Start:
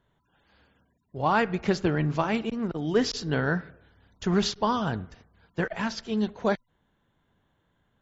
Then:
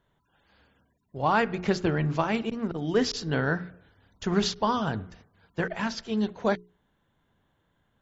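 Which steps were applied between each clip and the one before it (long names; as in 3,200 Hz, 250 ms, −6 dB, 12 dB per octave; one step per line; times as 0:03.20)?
mains-hum notches 60/120/180/240/300/360/420 Hz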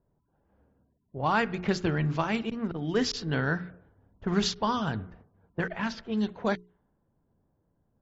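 low-pass that shuts in the quiet parts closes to 610 Hz, open at −21.5 dBFS
dynamic equaliser 550 Hz, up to −4 dB, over −35 dBFS, Q 0.73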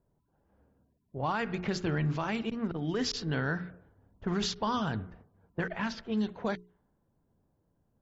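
brickwall limiter −21 dBFS, peak gain reduction 8 dB
level −1 dB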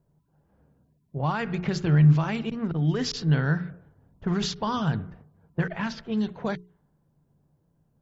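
parametric band 150 Hz +12 dB 0.34 octaves
level +2.5 dB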